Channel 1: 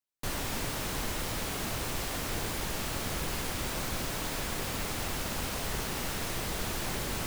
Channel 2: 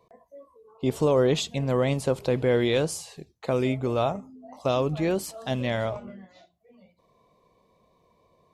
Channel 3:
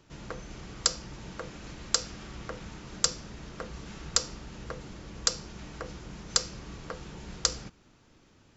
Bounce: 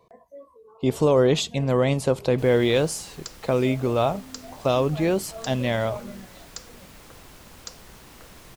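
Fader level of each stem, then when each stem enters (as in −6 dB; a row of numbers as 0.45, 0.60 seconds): −13.5, +3.0, −13.0 decibels; 2.15, 0.00, 2.40 seconds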